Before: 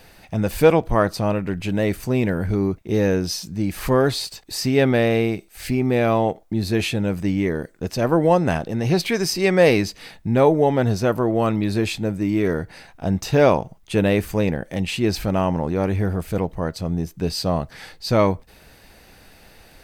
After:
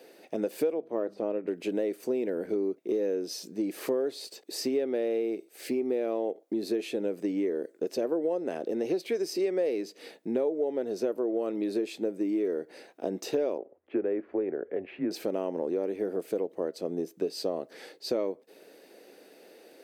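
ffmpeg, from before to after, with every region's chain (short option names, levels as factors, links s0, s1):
-filter_complex "[0:a]asettb=1/sr,asplit=3[s0][s1][s2];[s0]atrim=end=0.744[s3];[s1]atrim=start=0.74:end=1.48,asetpts=PTS-STARTPTS,afade=t=in:d=0.004:c=qsin,afade=t=out:st=0.736:d=0.004:c=qsin,bandreject=f=50:t=h:w=6,bandreject=f=100:t=h:w=6,bandreject=f=150:t=h:w=6,bandreject=f=200:t=h:w=6,bandreject=f=250:t=h:w=6,deesser=0.85,lowpass=f=2400:p=1[s4];[s2]atrim=start=1.476[s5];[s3][s4]acrossfade=d=0.004:c1=hsin:c2=qsin[s6];[s6][s5]acrossfade=d=0.004:c1=qsin:c2=hsin,asettb=1/sr,asplit=3[s7][s8][s9];[s7]atrim=end=13.584[s10];[s8]atrim=start=13.58:end=15.11,asetpts=PTS-STARTPTS,afade=t=in:d=0.004:c=qsin,afade=t=out:st=1.526:d=0.004:c=qsin,lowpass=f=2000:w=0.5412,lowpass=f=2000:w=1.3066,asubboost=boost=6:cutoff=190,afreqshift=-94[s11];[s9]atrim=start=15.106[s12];[s10][s11]acrossfade=d=0.004:c1=hsin:c2=qsin[s13];[s13][s12]acrossfade=d=0.004:c1=qsin:c2=hsin,highpass=f=320:w=0.5412,highpass=f=320:w=1.3066,lowshelf=f=660:t=q:w=1.5:g=11,acompressor=threshold=0.126:ratio=6,volume=0.376"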